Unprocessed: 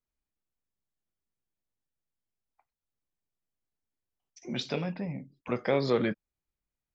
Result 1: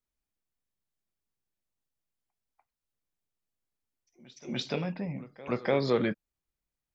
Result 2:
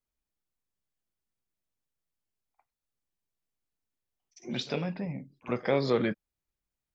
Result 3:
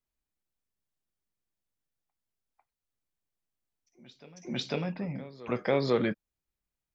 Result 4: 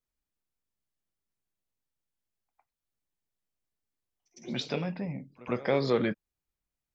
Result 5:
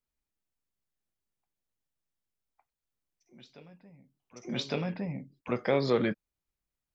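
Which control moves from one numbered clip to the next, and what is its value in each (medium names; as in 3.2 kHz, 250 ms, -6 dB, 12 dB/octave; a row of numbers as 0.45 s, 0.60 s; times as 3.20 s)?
reverse echo, time: 294 ms, 50 ms, 498 ms, 107 ms, 1159 ms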